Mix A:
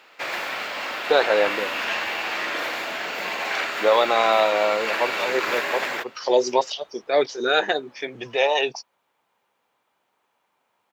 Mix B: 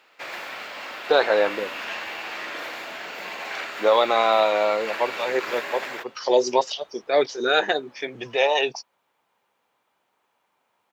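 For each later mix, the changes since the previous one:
first sound -6.0 dB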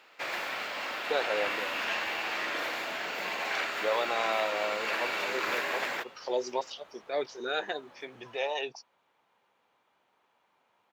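speech -12.0 dB

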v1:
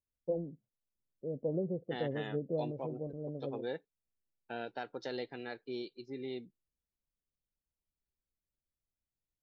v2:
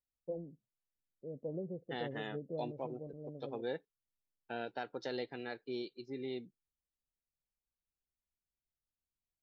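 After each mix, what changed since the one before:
first voice -6.5 dB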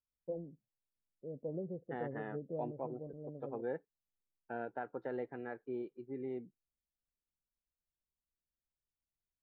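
master: add LPF 1700 Hz 24 dB/oct

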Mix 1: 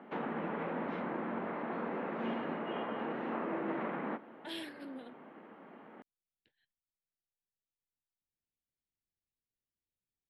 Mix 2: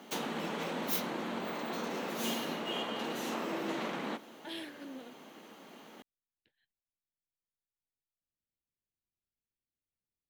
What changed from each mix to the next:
background: remove LPF 2000 Hz 24 dB/oct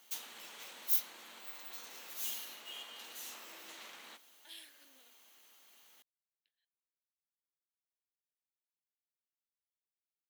master: add differentiator

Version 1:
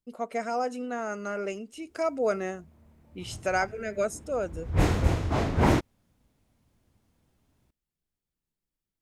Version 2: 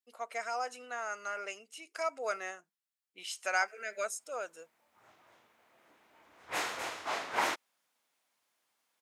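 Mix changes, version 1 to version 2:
background: entry +1.75 s; master: add HPF 990 Hz 12 dB/oct

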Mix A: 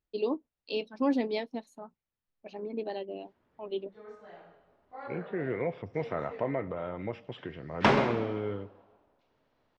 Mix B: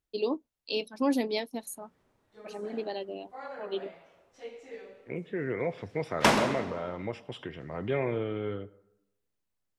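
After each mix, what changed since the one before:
background: entry -1.60 s; master: remove air absorption 200 m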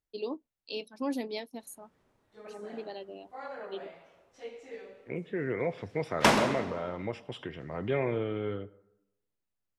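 first voice -6.0 dB

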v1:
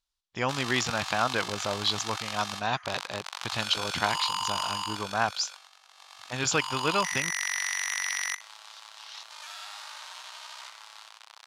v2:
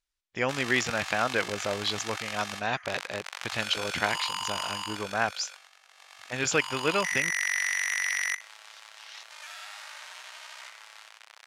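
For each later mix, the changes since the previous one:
master: add graphic EQ 125/500/1000/2000/4000 Hz -3/+4/-6/+6/-5 dB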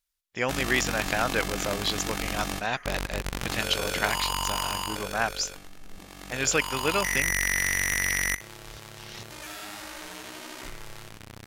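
background: remove Bessel high-pass 1100 Hz, order 6; master: remove air absorption 56 m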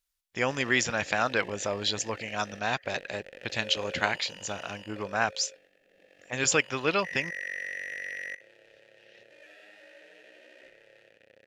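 background: add vowel filter e

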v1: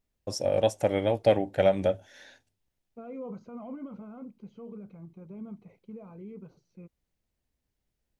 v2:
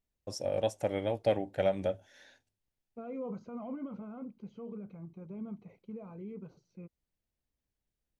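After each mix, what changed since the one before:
first voice -6.5 dB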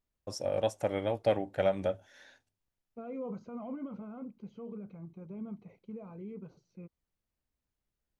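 first voice: add bell 1200 Hz +5.5 dB 0.78 oct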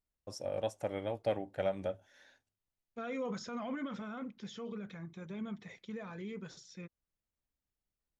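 first voice -5.5 dB; second voice: remove running mean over 25 samples

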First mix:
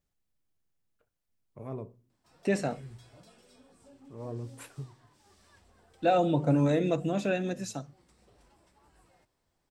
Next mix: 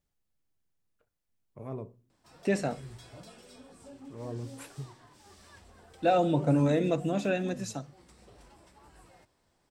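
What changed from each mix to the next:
background +7.0 dB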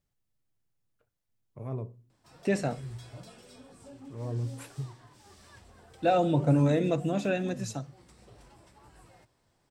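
master: add bell 120 Hz +8 dB 0.4 oct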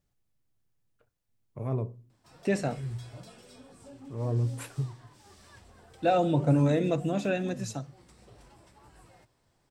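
first voice +5.0 dB

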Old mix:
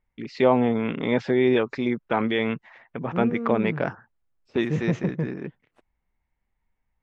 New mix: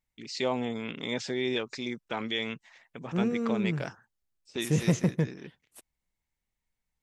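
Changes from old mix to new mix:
first voice -11.0 dB; master: remove LPF 1700 Hz 12 dB/oct

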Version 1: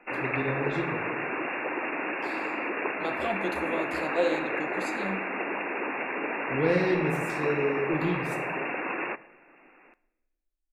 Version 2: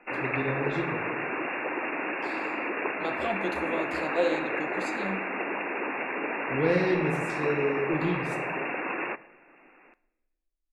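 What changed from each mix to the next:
master: add LPF 9300 Hz 12 dB/oct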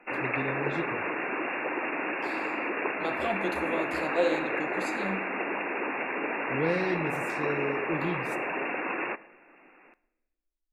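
first voice: send -11.5 dB; master: remove LPF 9300 Hz 12 dB/oct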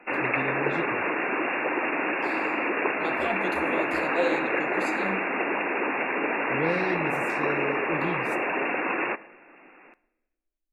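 background +4.5 dB

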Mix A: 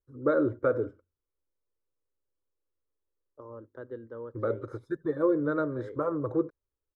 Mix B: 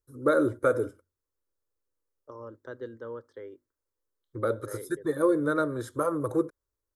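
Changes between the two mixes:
second voice: entry -1.10 s; master: remove tape spacing loss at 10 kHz 34 dB

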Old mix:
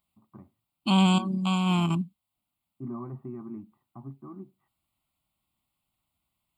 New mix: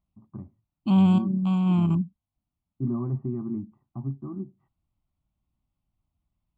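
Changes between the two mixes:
second voice -6.5 dB; master: add tilt -4 dB/oct

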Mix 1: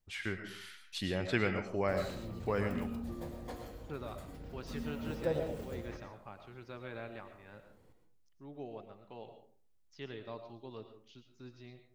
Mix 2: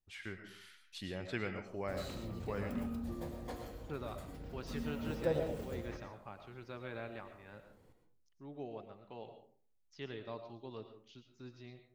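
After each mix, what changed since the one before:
first voice -7.5 dB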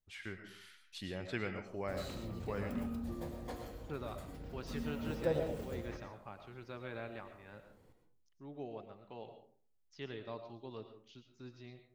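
none

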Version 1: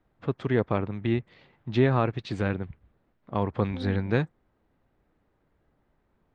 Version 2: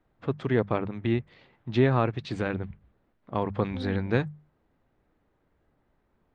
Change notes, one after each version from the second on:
master: add notches 50/100/150/200 Hz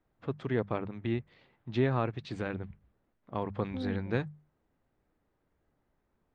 first voice -6.0 dB

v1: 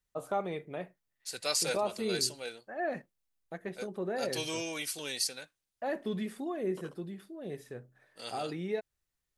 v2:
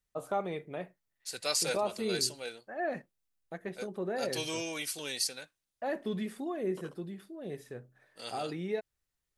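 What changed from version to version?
none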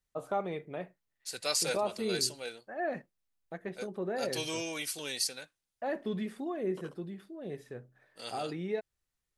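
first voice: add high shelf 6400 Hz -8.5 dB

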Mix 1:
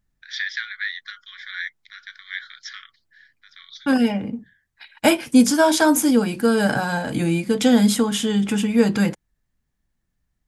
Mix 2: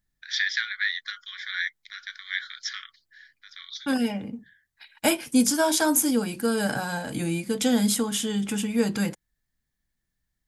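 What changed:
second voice -7.0 dB; master: add high shelf 5500 Hz +10 dB

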